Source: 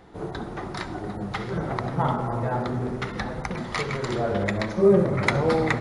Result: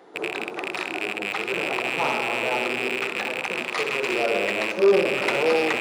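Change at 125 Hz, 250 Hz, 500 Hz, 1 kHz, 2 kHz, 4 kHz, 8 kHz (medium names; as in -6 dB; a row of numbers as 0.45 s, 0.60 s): -17.0 dB, -4.0 dB, +1.5 dB, +0.5 dB, +7.5 dB, +8.5 dB, +5.0 dB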